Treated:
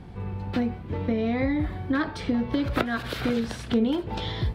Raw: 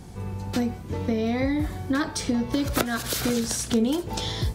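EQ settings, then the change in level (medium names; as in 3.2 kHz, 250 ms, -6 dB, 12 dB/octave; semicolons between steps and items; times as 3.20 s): distance through air 470 m; treble shelf 2.3 kHz +11 dB; 0.0 dB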